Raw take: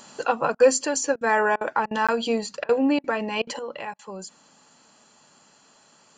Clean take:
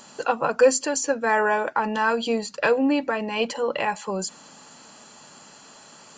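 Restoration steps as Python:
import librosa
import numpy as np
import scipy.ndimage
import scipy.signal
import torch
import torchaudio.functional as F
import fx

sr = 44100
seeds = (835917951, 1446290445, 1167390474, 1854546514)

y = fx.fix_interpolate(x, sr, at_s=(2.07,), length_ms=16.0)
y = fx.fix_interpolate(y, sr, at_s=(0.55, 1.16, 1.56, 1.86, 2.64, 2.99, 3.42, 3.94), length_ms=49.0)
y = fx.gain(y, sr, db=fx.steps((0.0, 0.0), (3.59, 9.0)))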